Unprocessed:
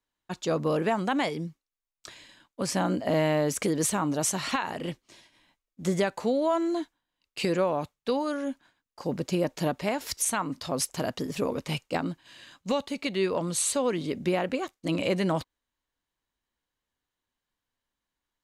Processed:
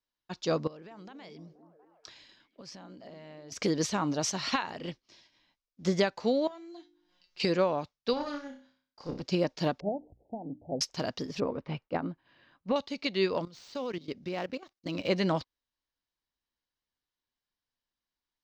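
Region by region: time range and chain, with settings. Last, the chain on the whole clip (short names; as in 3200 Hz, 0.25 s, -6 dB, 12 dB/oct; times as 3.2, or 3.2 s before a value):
0.67–3.52 compressor 16:1, threshold -37 dBFS + delay with a stepping band-pass 0.239 s, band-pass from 280 Hz, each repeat 0.7 oct, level -7 dB
6.47–7.4 notches 50/100/150/200/250/300/350 Hz + upward compressor, threshold -32 dBFS + resonator 180 Hz, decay 0.21 s, mix 90%
8.13–9.22 flutter echo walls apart 5.3 m, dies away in 0.45 s + tube stage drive 20 dB, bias 0.7
9.8–10.81 steep low-pass 810 Hz 96 dB/oct + notches 60/120/180/240/300 Hz
11.4–12.76 block floating point 7-bit + LPF 1600 Hz
13.45–15.09 switching dead time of 0.053 ms + level quantiser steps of 15 dB
whole clip: resonant high shelf 7200 Hz -12.5 dB, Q 3; upward expander 1.5:1, over -37 dBFS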